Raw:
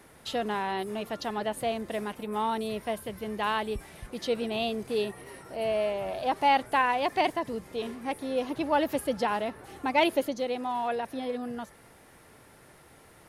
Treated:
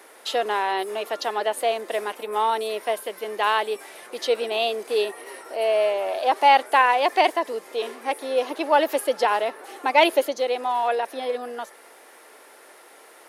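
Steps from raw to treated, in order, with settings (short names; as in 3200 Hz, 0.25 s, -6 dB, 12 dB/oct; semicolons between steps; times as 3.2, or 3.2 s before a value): HPF 370 Hz 24 dB/oct; gain +7.5 dB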